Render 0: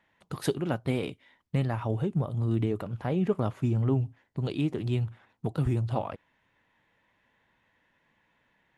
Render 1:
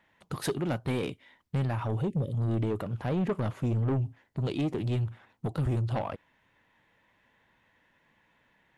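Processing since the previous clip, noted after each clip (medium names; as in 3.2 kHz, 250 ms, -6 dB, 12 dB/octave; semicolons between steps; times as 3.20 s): spectral selection erased 2.01–2.33 s, 590–1700 Hz; saturation -26 dBFS, distortion -11 dB; trim +2.5 dB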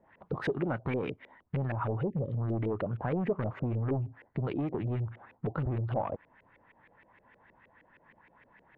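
compression 3:1, threshold -37 dBFS, peak gain reduction 8.5 dB; LFO low-pass saw up 6.4 Hz 430–2500 Hz; trim +4 dB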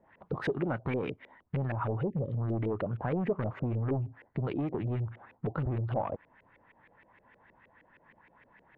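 no audible change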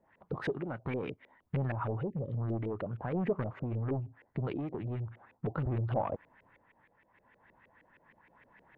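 random-step tremolo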